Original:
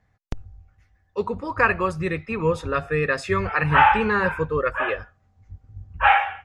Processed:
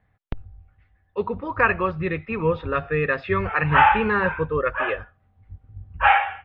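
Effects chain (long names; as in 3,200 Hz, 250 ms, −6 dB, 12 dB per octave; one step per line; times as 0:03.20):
Butterworth low-pass 3,600 Hz 36 dB per octave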